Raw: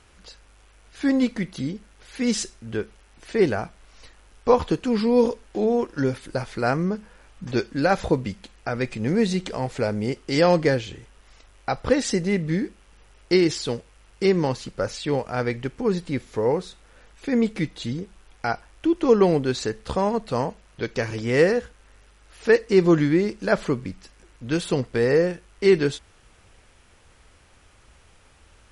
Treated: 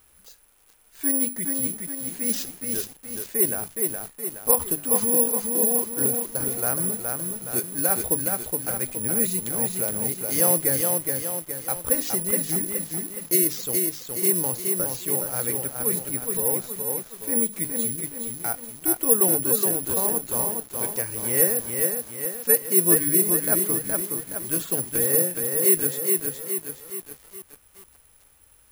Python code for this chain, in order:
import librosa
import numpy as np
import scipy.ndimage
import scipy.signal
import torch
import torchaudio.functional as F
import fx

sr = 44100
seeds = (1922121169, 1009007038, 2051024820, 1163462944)

y = fx.hum_notches(x, sr, base_hz=50, count=6)
y = (np.kron(y[::4], np.eye(4)[0]) * 4)[:len(y)]
y = fx.echo_crushed(y, sr, ms=419, feedback_pct=55, bits=5, wet_db=-3.5)
y = y * 10.0 ** (-8.5 / 20.0)